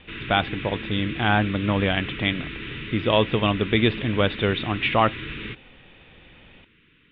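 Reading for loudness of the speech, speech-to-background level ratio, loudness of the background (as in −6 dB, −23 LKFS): −23.5 LKFS, 10.0 dB, −33.5 LKFS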